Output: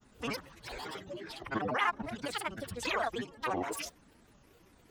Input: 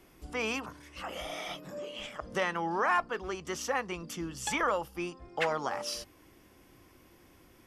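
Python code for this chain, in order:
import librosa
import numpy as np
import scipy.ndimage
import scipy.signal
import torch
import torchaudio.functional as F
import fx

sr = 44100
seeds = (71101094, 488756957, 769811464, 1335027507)

y = fx.granulator(x, sr, seeds[0], grain_ms=100.0, per_s=20.0, spray_ms=100.0, spread_st=12)
y = fx.stretch_vocoder(y, sr, factor=0.64)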